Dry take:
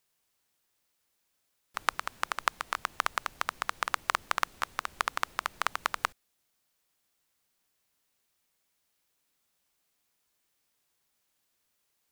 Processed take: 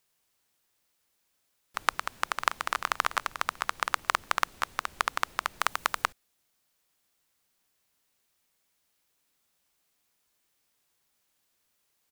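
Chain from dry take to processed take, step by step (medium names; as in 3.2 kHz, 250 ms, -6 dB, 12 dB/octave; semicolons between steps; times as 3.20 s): 1.94–2.73 s: echo throw 440 ms, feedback 30%, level -4 dB; 5.60–6.02 s: treble shelf 7.6 kHz +6 dB; trim +2 dB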